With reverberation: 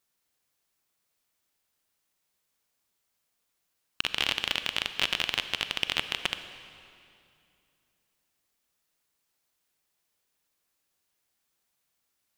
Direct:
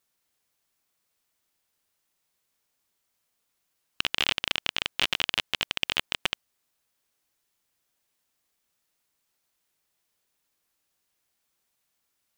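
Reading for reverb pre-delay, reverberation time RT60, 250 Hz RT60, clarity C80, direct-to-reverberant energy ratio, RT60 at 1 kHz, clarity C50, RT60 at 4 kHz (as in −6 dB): 34 ms, 2.6 s, 3.0 s, 11.0 dB, 10.0 dB, 2.5 s, 10.5 dB, 2.2 s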